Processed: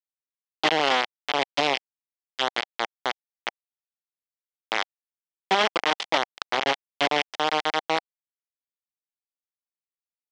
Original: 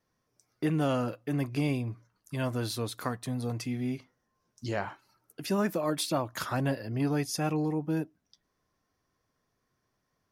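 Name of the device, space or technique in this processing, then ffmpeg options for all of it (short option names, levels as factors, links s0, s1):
hand-held game console: -af "acrusher=bits=3:mix=0:aa=0.000001,highpass=400,equalizer=f=780:t=q:w=4:g=5,equalizer=f=2100:t=q:w=4:g=5,equalizer=f=3200:t=q:w=4:g=7,lowpass=f=5400:w=0.5412,lowpass=f=5400:w=1.3066,volume=1.88"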